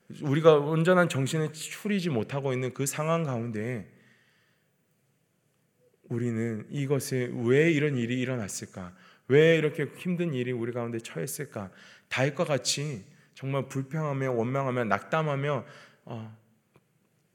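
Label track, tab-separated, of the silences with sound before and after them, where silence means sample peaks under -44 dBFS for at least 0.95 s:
3.860000	6.060000	silence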